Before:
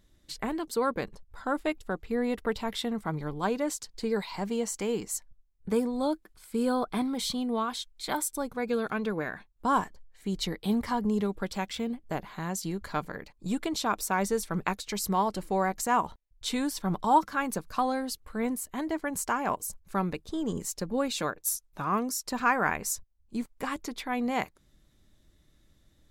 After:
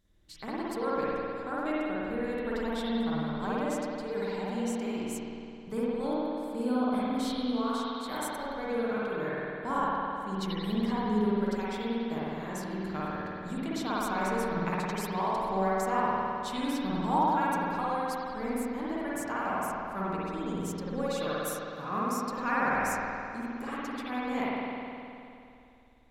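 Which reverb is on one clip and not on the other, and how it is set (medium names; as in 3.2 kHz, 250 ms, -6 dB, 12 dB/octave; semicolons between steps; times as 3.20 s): spring tank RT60 2.7 s, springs 52 ms, chirp 45 ms, DRR -8 dB; trim -9.5 dB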